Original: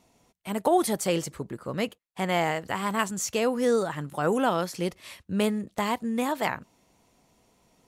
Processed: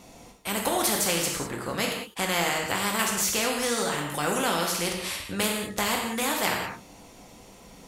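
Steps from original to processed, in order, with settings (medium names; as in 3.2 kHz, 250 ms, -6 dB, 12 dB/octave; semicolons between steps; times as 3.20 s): gated-style reverb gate 230 ms falling, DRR 0.5 dB; spectrum-flattening compressor 2:1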